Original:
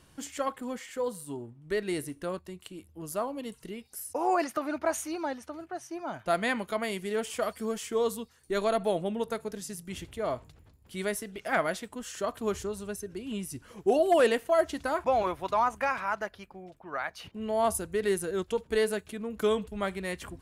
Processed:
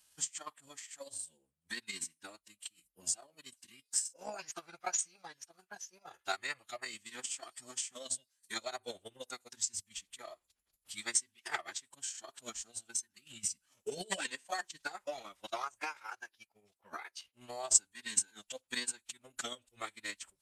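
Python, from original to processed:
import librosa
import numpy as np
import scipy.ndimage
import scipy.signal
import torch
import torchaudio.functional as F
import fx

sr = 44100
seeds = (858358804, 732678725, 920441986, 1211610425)

y = F.preemphasis(torch.from_numpy(x), 0.97).numpy()
y = fx.pitch_keep_formants(y, sr, semitones=-10.0)
y = fx.transient(y, sr, attack_db=11, sustain_db=-10)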